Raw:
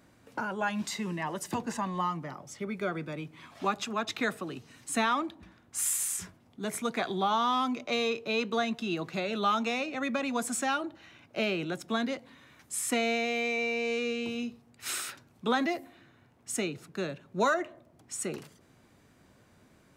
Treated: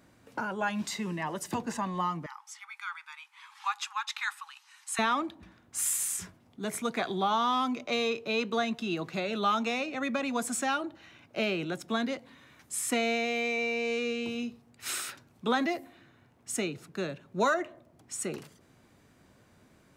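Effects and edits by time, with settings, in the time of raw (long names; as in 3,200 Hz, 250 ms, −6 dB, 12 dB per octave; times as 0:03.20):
0:02.26–0:04.99: linear-phase brick-wall band-pass 790–13,000 Hz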